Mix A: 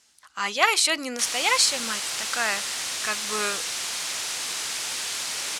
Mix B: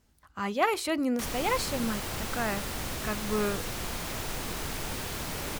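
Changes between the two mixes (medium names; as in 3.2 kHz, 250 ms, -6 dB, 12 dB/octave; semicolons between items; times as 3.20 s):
speech -4.5 dB; master: remove frequency weighting ITU-R 468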